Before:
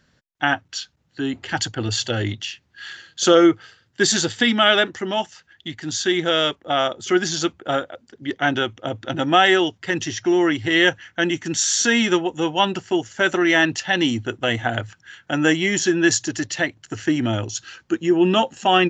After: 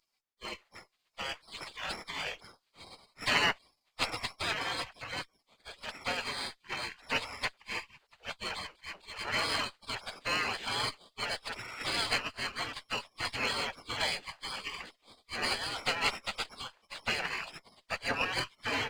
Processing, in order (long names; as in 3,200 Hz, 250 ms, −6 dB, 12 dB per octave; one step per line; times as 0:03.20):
hearing-aid frequency compression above 2,200 Hz 1.5 to 1
gate on every frequency bin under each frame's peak −30 dB weak
windowed peak hold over 3 samples
level +9 dB